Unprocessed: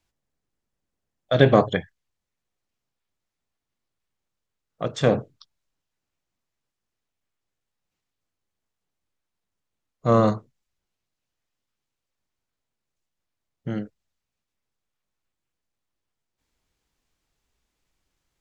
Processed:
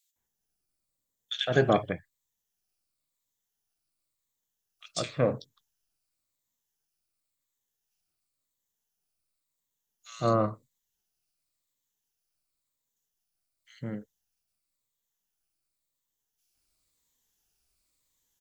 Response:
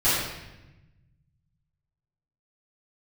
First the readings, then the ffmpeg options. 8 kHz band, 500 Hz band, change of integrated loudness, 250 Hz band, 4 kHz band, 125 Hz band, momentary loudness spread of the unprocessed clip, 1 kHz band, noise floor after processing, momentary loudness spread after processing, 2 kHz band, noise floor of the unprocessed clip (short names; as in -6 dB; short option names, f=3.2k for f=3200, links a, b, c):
n/a, -7.0 dB, -7.0 dB, -8.0 dB, -1.0 dB, -8.0 dB, 16 LU, -5.5 dB, -84 dBFS, 16 LU, -5.5 dB, -84 dBFS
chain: -filter_complex "[0:a]afftfilt=real='re*pow(10,7/40*sin(2*PI*(1*log(max(b,1)*sr/1024/100)/log(2)-(-0.94)*(pts-256)/sr)))':imag='im*pow(10,7/40*sin(2*PI*(1*log(max(b,1)*sr/1024/100)/log(2)-(-0.94)*(pts-256)/sr)))':win_size=1024:overlap=0.75,acrossover=split=2200[a][b];[a]adelay=160[c];[c][b]amix=inputs=2:normalize=0,crystalizer=i=4:c=0,volume=-8dB"